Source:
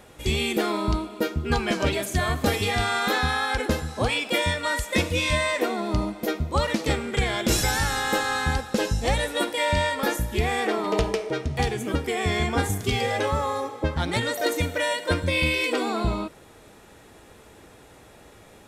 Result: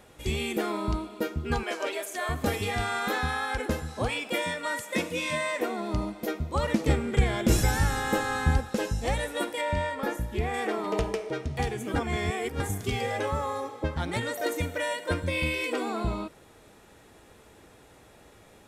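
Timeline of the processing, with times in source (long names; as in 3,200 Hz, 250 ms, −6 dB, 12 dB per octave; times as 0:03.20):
0:01.63–0:02.29: high-pass filter 380 Hz 24 dB per octave
0:04.45–0:05.61: high-pass filter 140 Hz 24 dB per octave
0:06.63–0:08.69: low-shelf EQ 370 Hz +8 dB
0:09.61–0:10.54: high-shelf EQ 3,000 Hz −8.5 dB
0:11.96–0:12.60: reverse
whole clip: dynamic equaliser 4,200 Hz, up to −5 dB, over −42 dBFS, Q 1.4; level −4.5 dB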